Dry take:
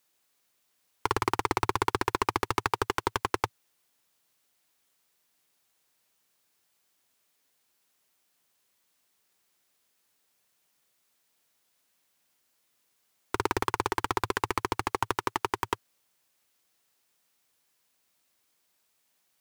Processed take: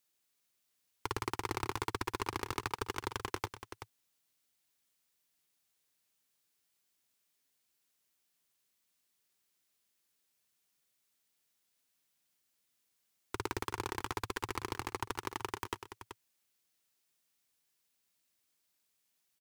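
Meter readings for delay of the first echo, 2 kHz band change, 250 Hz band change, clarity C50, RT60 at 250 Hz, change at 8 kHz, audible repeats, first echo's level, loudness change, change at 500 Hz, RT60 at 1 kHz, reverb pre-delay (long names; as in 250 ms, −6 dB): 127 ms, −8.5 dB, −8.0 dB, no reverb audible, no reverb audible, −6.0 dB, 2, −19.0 dB, −9.0 dB, −9.5 dB, no reverb audible, no reverb audible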